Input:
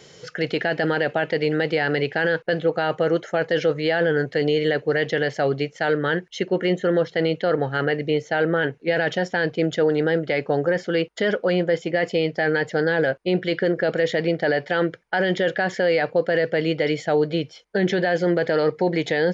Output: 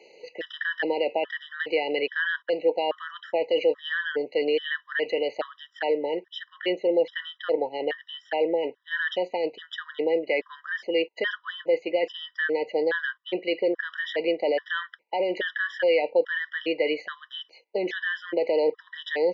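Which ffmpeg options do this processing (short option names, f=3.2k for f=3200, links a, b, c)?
-af "aexciter=amount=1.2:drive=8.5:freq=2k,highpass=f=360:w=0.5412,highpass=f=360:w=1.3066,equalizer=f=400:t=q:w=4:g=-5,equalizer=f=710:t=q:w=4:g=-6,equalizer=f=1.4k:t=q:w=4:g=-6,equalizer=f=2.2k:t=q:w=4:g=-9,lowpass=f=3.3k:w=0.5412,lowpass=f=3.3k:w=1.3066,afftfilt=real='re*gt(sin(2*PI*1.2*pts/sr)*(1-2*mod(floor(b*sr/1024/980),2)),0)':imag='im*gt(sin(2*PI*1.2*pts/sr)*(1-2*mod(floor(b*sr/1024/980),2)),0)':win_size=1024:overlap=0.75,volume=1.5dB"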